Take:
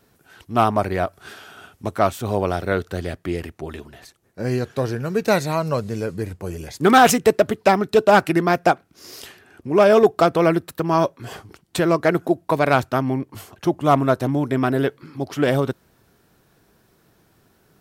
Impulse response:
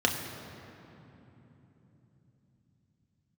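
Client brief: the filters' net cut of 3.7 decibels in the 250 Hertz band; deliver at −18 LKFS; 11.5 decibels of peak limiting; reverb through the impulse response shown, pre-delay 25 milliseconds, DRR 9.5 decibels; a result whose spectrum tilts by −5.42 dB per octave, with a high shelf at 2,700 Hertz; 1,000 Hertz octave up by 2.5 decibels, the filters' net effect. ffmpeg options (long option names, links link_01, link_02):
-filter_complex "[0:a]equalizer=frequency=250:width_type=o:gain=-5.5,equalizer=frequency=1000:width_type=o:gain=3.5,highshelf=frequency=2700:gain=3,alimiter=limit=-11dB:level=0:latency=1,asplit=2[link_01][link_02];[1:a]atrim=start_sample=2205,adelay=25[link_03];[link_02][link_03]afir=irnorm=-1:irlink=0,volume=-21.5dB[link_04];[link_01][link_04]amix=inputs=2:normalize=0,volume=6dB"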